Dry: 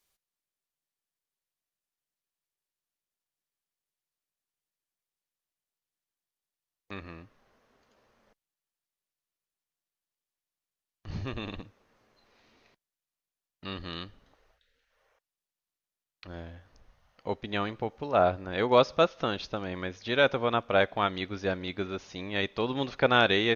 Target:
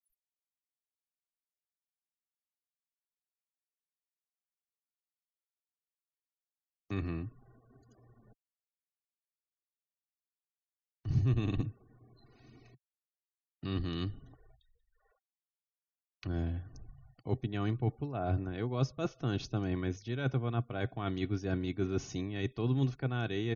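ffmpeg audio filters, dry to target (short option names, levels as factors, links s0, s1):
-filter_complex "[0:a]acrossover=split=110[s0][s1];[s1]crystalizer=i=2:c=0[s2];[s0][s2]amix=inputs=2:normalize=0,equalizer=f=130:w=2.6:g=11.5,aecho=1:1:2.7:0.44,areverse,acompressor=threshold=0.0178:ratio=6,areverse,afftfilt=real='re*gte(hypot(re,im),0.00112)':imag='im*gte(hypot(re,im),0.00112)':win_size=1024:overlap=0.75,equalizer=f=125:t=o:w=1:g=6,equalizer=f=250:t=o:w=1:g=5,equalizer=f=500:t=o:w=1:g=-5,equalizer=f=1000:t=o:w=1:g=-5,equalizer=f=2000:t=o:w=1:g=-6,equalizer=f=4000:t=o:w=1:g=-11,volume=1.78"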